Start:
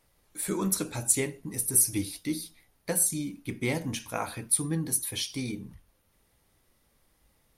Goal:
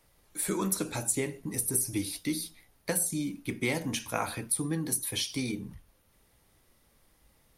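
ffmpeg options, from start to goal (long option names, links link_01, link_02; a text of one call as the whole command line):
ffmpeg -i in.wav -filter_complex "[0:a]acrossover=split=210|1100[link_01][link_02][link_03];[link_01]acompressor=threshold=-41dB:ratio=4[link_04];[link_02]acompressor=threshold=-32dB:ratio=4[link_05];[link_03]acompressor=threshold=-30dB:ratio=4[link_06];[link_04][link_05][link_06]amix=inputs=3:normalize=0,volume=2.5dB" out.wav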